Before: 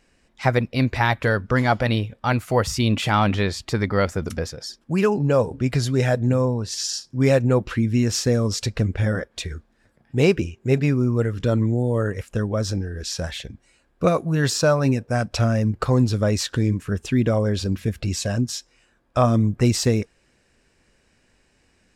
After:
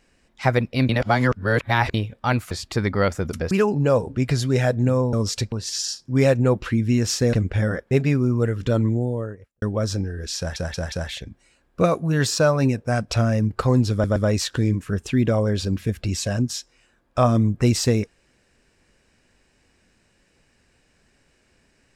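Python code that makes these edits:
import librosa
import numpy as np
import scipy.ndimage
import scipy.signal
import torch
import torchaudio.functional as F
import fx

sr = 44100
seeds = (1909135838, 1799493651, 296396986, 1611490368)

y = fx.studio_fade_out(x, sr, start_s=11.58, length_s=0.81)
y = fx.edit(y, sr, fx.reverse_span(start_s=0.89, length_s=1.05),
    fx.cut(start_s=2.51, length_s=0.97),
    fx.cut(start_s=4.48, length_s=0.47),
    fx.move(start_s=8.38, length_s=0.39, to_s=6.57),
    fx.cut(start_s=9.35, length_s=1.33),
    fx.stutter(start_s=13.15, slice_s=0.18, count=4),
    fx.stutter(start_s=16.15, slice_s=0.12, count=3), tone=tone)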